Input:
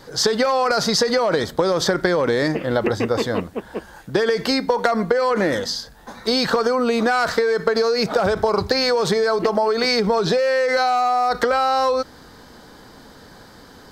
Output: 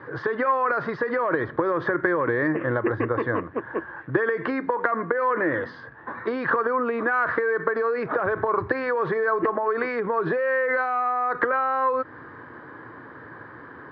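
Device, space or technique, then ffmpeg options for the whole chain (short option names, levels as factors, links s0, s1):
bass amplifier: -af "acompressor=threshold=0.0708:ratio=4,highpass=f=90:w=0.5412,highpass=f=90:w=1.3066,equalizer=f=120:t=q:w=4:g=5,equalizer=f=200:t=q:w=4:g=-10,equalizer=f=330:t=q:w=4:g=7,equalizer=f=750:t=q:w=4:g=-5,equalizer=f=1100:t=q:w=4:g=9,equalizer=f=1700:t=q:w=4:g=9,lowpass=f=2100:w=0.5412,lowpass=f=2100:w=1.3066"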